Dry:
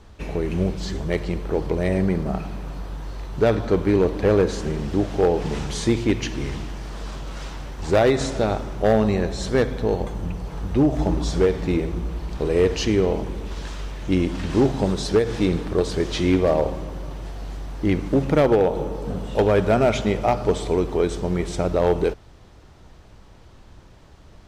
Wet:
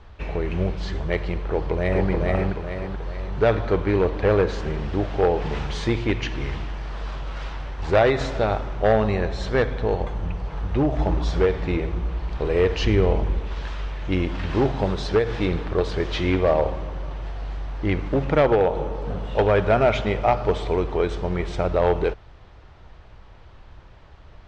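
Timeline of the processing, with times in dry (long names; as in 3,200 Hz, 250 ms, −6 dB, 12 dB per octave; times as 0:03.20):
0:01.46–0:02.09: delay throw 430 ms, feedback 45%, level −1.5 dB
0:12.81–0:13.39: low-shelf EQ 170 Hz +7 dB
whole clip: low-pass filter 3,200 Hz 12 dB per octave; parametric band 240 Hz −8.5 dB 1.8 octaves; level +3 dB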